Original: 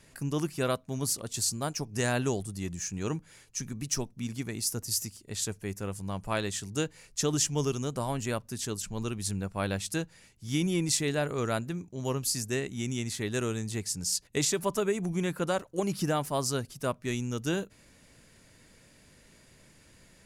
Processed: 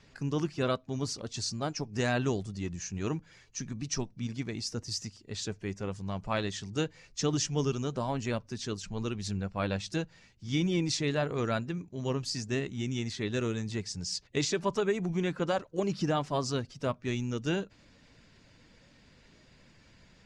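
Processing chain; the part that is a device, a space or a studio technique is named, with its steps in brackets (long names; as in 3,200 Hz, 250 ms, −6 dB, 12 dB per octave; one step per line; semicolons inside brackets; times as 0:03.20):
clip after many re-uploads (low-pass filter 5,900 Hz 24 dB per octave; spectral magnitudes quantised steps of 15 dB)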